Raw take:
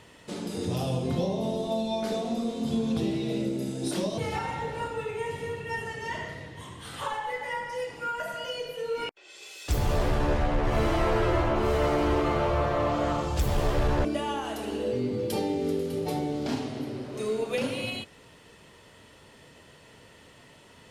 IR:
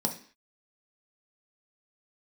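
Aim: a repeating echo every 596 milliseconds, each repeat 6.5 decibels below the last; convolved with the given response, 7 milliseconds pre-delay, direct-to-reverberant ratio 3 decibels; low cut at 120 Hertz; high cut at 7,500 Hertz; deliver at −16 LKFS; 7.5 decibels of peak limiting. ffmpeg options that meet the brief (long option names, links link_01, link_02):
-filter_complex "[0:a]highpass=120,lowpass=7500,alimiter=limit=-23dB:level=0:latency=1,aecho=1:1:596|1192|1788|2384|2980|3576:0.473|0.222|0.105|0.0491|0.0231|0.0109,asplit=2[link_01][link_02];[1:a]atrim=start_sample=2205,adelay=7[link_03];[link_02][link_03]afir=irnorm=-1:irlink=0,volume=-9dB[link_04];[link_01][link_04]amix=inputs=2:normalize=0,volume=11.5dB"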